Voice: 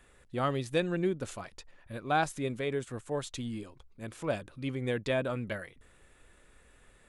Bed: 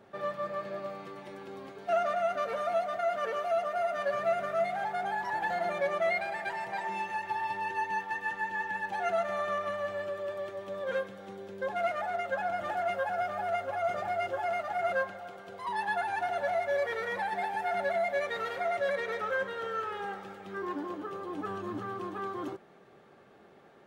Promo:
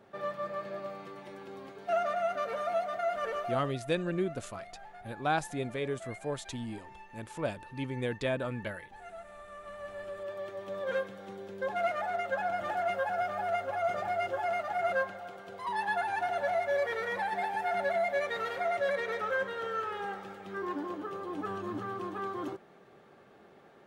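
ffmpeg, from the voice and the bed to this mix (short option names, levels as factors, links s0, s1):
-filter_complex "[0:a]adelay=3150,volume=0.841[s0];[1:a]volume=5.96,afade=t=out:st=3.37:d=0.41:silence=0.16788,afade=t=in:st=9.51:d=1.25:silence=0.141254[s1];[s0][s1]amix=inputs=2:normalize=0"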